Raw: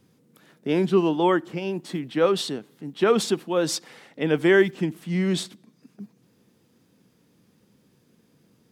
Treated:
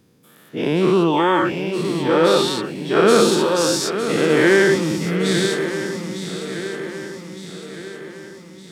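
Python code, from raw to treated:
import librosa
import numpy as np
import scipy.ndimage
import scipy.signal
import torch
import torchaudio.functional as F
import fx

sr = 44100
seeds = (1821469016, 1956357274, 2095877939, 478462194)

y = fx.spec_dilate(x, sr, span_ms=240)
y = fx.echo_swing(y, sr, ms=1211, ratio=3, feedback_pct=48, wet_db=-9.5)
y = y * librosa.db_to_amplitude(-1.0)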